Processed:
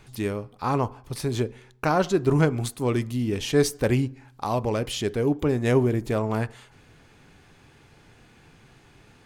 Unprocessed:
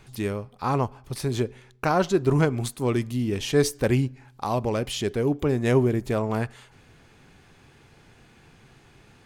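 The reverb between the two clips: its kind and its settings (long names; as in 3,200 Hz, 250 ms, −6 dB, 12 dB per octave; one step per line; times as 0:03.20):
feedback delay network reverb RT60 0.45 s, low-frequency decay 0.8×, high-frequency decay 0.25×, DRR 16.5 dB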